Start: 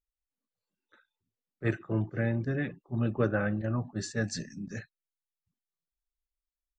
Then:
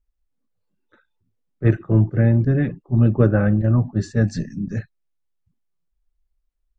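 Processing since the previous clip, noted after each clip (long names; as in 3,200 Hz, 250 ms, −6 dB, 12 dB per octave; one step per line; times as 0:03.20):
spectral tilt −3 dB per octave
level +6 dB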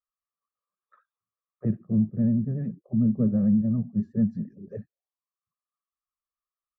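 comb filter 1.7 ms, depth 71%
envelope filter 220–1,200 Hz, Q 6.8, down, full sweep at −18.5 dBFS
pitch vibrato 11 Hz 62 cents
level +4 dB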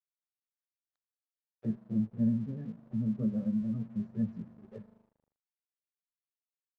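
spring reverb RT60 3.2 s, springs 40 ms, chirp 40 ms, DRR 16 dB
multi-voice chorus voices 4, 0.54 Hz, delay 16 ms, depth 2.5 ms
dead-zone distortion −53 dBFS
level −6 dB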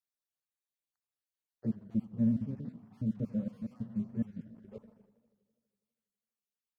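time-frequency cells dropped at random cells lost 37%
feedback echo with a swinging delay time 82 ms, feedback 75%, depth 159 cents, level −19.5 dB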